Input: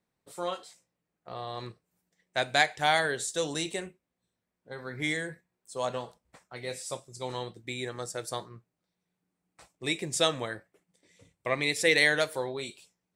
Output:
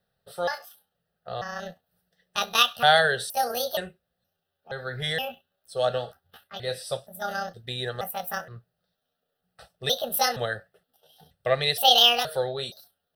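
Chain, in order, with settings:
pitch shifter gated in a rhythm +8 semitones, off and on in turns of 471 ms
phaser with its sweep stopped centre 1,500 Hz, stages 8
level +8.5 dB

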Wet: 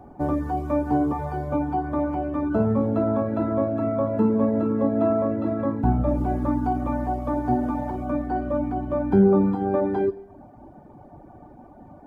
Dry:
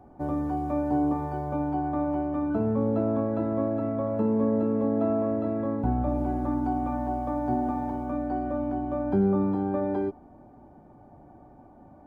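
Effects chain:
four-comb reverb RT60 1 s, DRR 6.5 dB
reverb reduction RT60 0.73 s
level +6.5 dB

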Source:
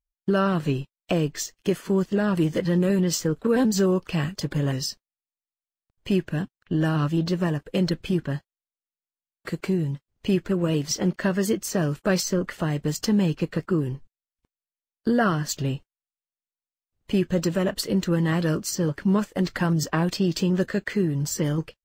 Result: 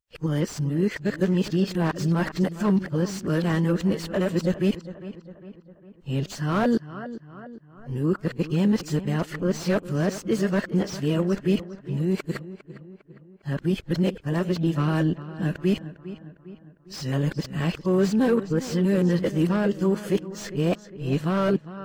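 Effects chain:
played backwards from end to start
feedback echo with a low-pass in the loop 404 ms, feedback 52%, low-pass 2,600 Hz, level −14.5 dB
slew-rate limiting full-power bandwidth 80 Hz

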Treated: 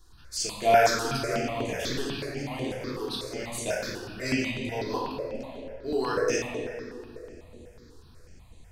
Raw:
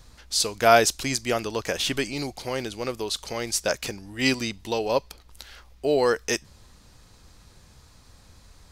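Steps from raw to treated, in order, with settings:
0:05.08–0:05.86: high-shelf EQ 5,500 Hz −10 dB
convolution reverb RT60 2.8 s, pre-delay 3 ms, DRR −7 dB
step-sequenced phaser 8.1 Hz 610–5,200 Hz
level −8.5 dB

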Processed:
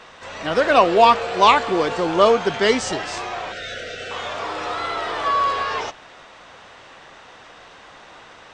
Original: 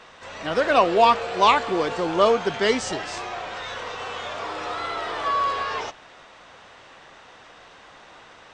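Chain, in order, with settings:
0:03.52–0:04.11: Chebyshev band-stop filter 680–1,400 Hz, order 3
level +3.5 dB

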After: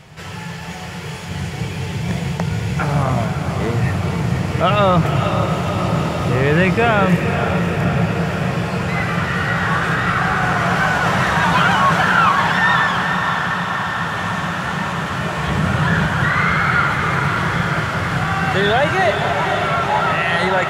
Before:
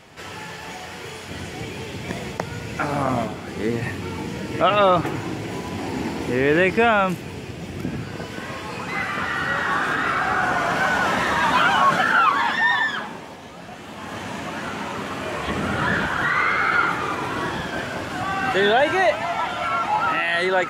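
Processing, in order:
low shelf with overshoot 200 Hz +6 dB, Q 3
in parallel at −9 dB: soft clipping −16 dBFS, distortion −13 dB
on the sum: feedback delay with all-pass diffusion 515 ms, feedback 78%, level −6 dB

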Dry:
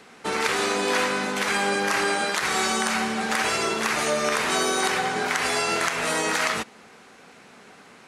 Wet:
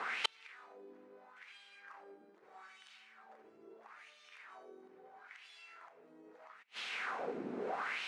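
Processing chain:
gate with flip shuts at −22 dBFS, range −42 dB
LFO wah 0.77 Hz 300–3,300 Hz, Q 2.8
level +17 dB

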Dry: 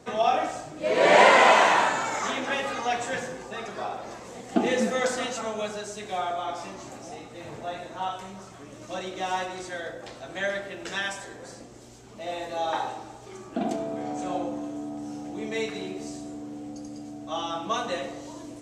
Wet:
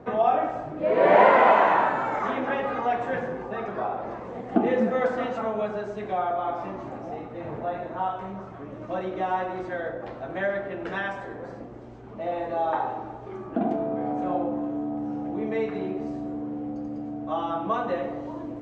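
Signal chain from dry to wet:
low-pass filter 1,400 Hz 12 dB per octave
in parallel at 0 dB: downward compressor, threshold −33 dBFS, peak gain reduction 18.5 dB

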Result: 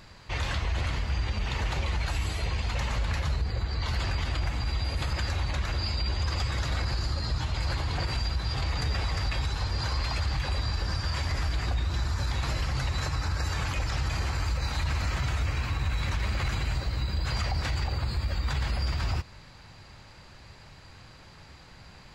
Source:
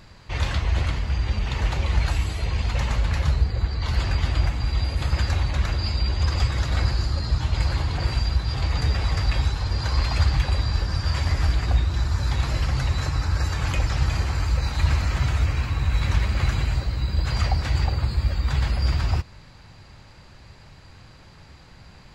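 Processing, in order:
low-shelf EQ 400 Hz −4 dB
brickwall limiter −20.5 dBFS, peak gain reduction 8.5 dB

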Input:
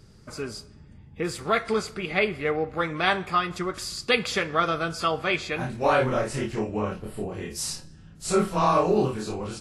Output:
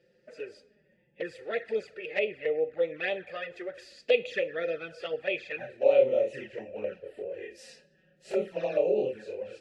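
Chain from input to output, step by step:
formant filter e
flanger swept by the level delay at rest 5.8 ms, full sweep at −30.5 dBFS
level +7.5 dB

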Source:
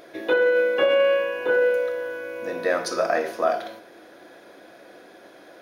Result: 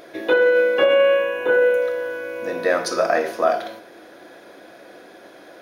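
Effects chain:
0:00.84–0:01.82: parametric band 4,800 Hz −14.5 dB 0.25 octaves
level +3.5 dB

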